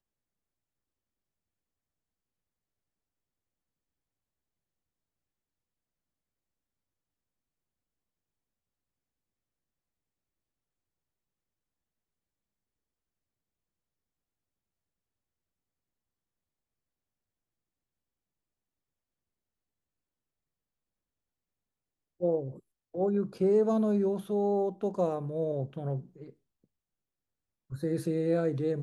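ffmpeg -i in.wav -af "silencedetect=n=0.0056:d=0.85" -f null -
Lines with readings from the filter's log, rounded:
silence_start: 0.00
silence_end: 22.21 | silence_duration: 22.21
silence_start: 26.30
silence_end: 27.71 | silence_duration: 1.41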